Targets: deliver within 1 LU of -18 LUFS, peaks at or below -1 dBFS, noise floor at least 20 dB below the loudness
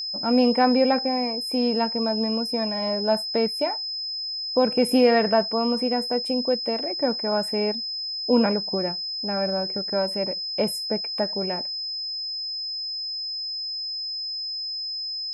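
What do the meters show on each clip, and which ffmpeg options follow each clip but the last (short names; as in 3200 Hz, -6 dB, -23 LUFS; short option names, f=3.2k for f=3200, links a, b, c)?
steady tone 5100 Hz; tone level -28 dBFS; loudness -24.0 LUFS; peak -7.0 dBFS; loudness target -18.0 LUFS
-> -af "bandreject=f=5.1k:w=30"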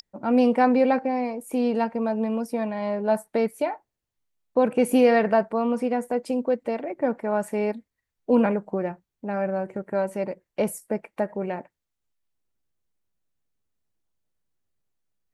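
steady tone none; loudness -25.0 LUFS; peak -7.0 dBFS; loudness target -18.0 LUFS
-> -af "volume=7dB,alimiter=limit=-1dB:level=0:latency=1"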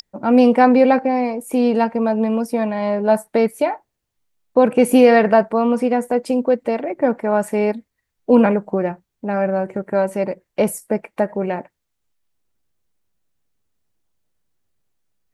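loudness -18.0 LUFS; peak -1.0 dBFS; noise floor -77 dBFS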